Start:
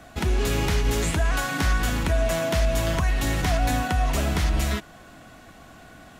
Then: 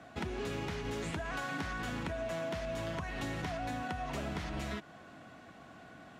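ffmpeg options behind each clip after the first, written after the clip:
-af "highpass=110,aemphasis=mode=reproduction:type=50fm,acompressor=threshold=0.0355:ratio=6,volume=0.531"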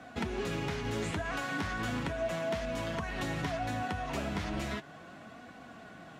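-af "flanger=delay=4:depth=6.4:regen=57:speed=0.36:shape=sinusoidal,volume=2.37"

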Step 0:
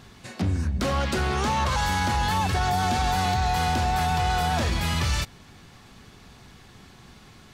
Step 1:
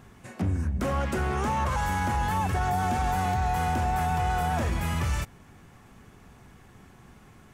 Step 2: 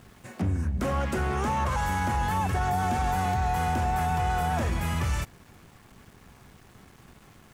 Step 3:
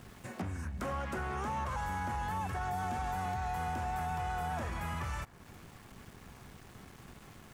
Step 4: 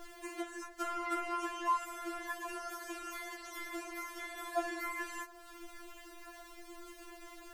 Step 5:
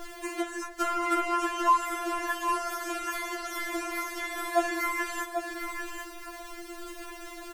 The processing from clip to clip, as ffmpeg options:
-af "equalizer=f=4200:w=1.3:g=-13.5,volume=0.794"
-af "aeval=exprs='val(0)*gte(abs(val(0)),0.00237)':c=same"
-filter_complex "[0:a]acrossover=split=800|1600[s0][s1][s2];[s0]acompressor=threshold=0.0112:ratio=4[s3];[s1]acompressor=threshold=0.01:ratio=4[s4];[s2]acompressor=threshold=0.00251:ratio=4[s5];[s3][s4][s5]amix=inputs=3:normalize=0"
-af "afftfilt=real='re*4*eq(mod(b,16),0)':imag='im*4*eq(mod(b,16),0)':win_size=2048:overlap=0.75,volume=1.88"
-af "aecho=1:1:791:0.447,volume=2.82"

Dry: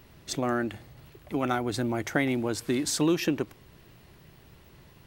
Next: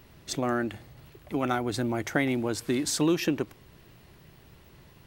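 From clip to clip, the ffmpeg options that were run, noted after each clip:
-af anull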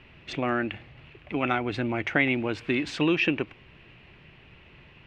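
-af "lowpass=f=2600:t=q:w=4.1"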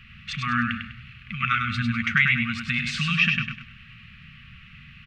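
-filter_complex "[0:a]afftfilt=real='re*(1-between(b*sr/4096,240,1100))':imag='im*(1-between(b*sr/4096,240,1100))':win_size=4096:overlap=0.75,asplit=2[s0][s1];[s1]aecho=0:1:100|200|300|400:0.562|0.197|0.0689|0.0241[s2];[s0][s2]amix=inputs=2:normalize=0,volume=1.78"

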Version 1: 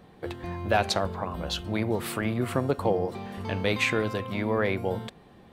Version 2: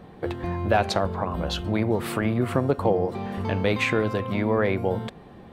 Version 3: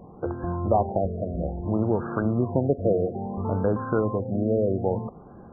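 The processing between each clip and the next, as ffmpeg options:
-filter_complex "[0:a]highshelf=f=2500:g=-8,asplit=2[s0][s1];[s1]acompressor=threshold=0.0224:ratio=6,volume=1[s2];[s0][s2]amix=inputs=2:normalize=0,volume=1.19"
-af "afftfilt=real='re*lt(b*sr/1024,690*pow(1700/690,0.5+0.5*sin(2*PI*0.6*pts/sr)))':imag='im*lt(b*sr/1024,690*pow(1700/690,0.5+0.5*sin(2*PI*0.6*pts/sr)))':win_size=1024:overlap=0.75"

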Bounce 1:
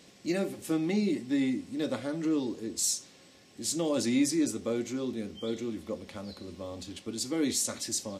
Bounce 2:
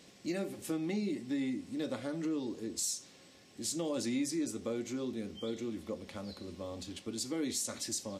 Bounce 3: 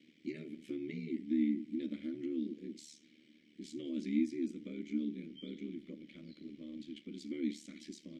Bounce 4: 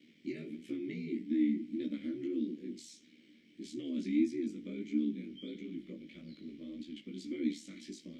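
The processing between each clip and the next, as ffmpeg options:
-af "acompressor=threshold=0.0224:ratio=2,volume=0.794"
-filter_complex "[0:a]asplit=3[s0][s1][s2];[s0]bandpass=f=270:t=q:w=8,volume=1[s3];[s1]bandpass=f=2290:t=q:w=8,volume=0.501[s4];[s2]bandpass=f=3010:t=q:w=8,volume=0.355[s5];[s3][s4][s5]amix=inputs=3:normalize=0,aeval=exprs='val(0)*sin(2*PI*37*n/s)':c=same,volume=2.37"
-af "flanger=delay=16.5:depth=5.2:speed=1.6,volume=1.78"

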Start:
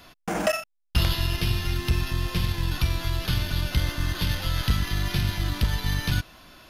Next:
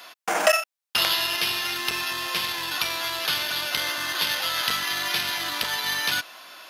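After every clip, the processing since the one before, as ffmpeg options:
-af "highpass=660,volume=2.37"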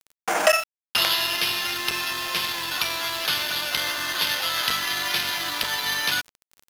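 -af "aeval=exprs='val(0)*gte(abs(val(0)),0.0188)':c=same,volume=1.12"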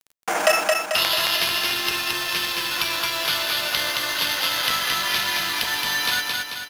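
-af "aecho=1:1:220|440|660|880|1100|1320|1540:0.708|0.368|0.191|0.0995|0.0518|0.0269|0.014"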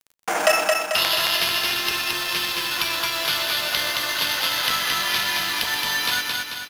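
-af "aecho=1:1:127:0.224"

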